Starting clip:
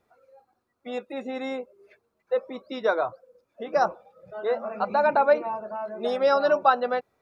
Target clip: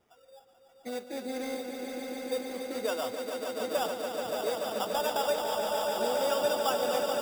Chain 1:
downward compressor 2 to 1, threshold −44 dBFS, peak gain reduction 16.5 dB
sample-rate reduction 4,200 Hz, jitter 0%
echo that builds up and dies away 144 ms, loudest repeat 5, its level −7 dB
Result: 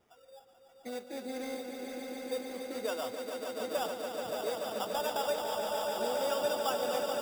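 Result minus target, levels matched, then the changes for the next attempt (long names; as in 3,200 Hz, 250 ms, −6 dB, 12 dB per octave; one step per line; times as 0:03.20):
downward compressor: peak gain reduction +3.5 dB
change: downward compressor 2 to 1, threshold −37 dBFS, peak gain reduction 13 dB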